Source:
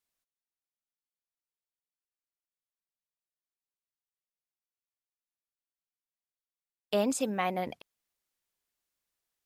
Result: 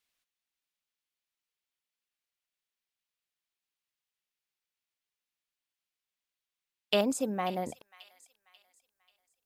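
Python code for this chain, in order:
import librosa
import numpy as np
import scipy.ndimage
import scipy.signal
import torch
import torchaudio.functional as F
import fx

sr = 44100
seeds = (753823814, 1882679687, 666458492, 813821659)

y = fx.peak_eq(x, sr, hz=2800.0, db=fx.steps((0.0, 9.0), (7.01, -8.5)), octaves=1.9)
y = fx.echo_wet_highpass(y, sr, ms=538, feedback_pct=38, hz=2000.0, wet_db=-13.5)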